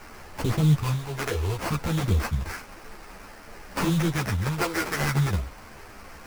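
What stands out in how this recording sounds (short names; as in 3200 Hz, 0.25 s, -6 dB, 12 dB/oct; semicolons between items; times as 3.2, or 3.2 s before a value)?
a quantiser's noise floor 8-bit, dither triangular; phasing stages 2, 0.58 Hz, lowest notch 170–1200 Hz; aliases and images of a low sample rate 3600 Hz, jitter 20%; a shimmering, thickened sound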